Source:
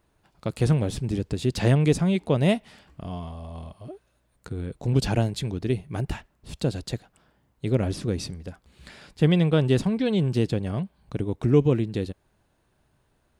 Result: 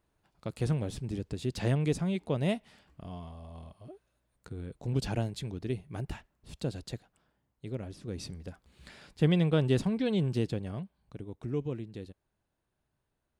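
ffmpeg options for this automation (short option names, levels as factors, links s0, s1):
-af "volume=1.41,afade=t=out:st=6.9:d=1.09:silence=0.375837,afade=t=in:st=7.99:d=0.38:silence=0.266073,afade=t=out:st=10.19:d=0.97:silence=0.354813"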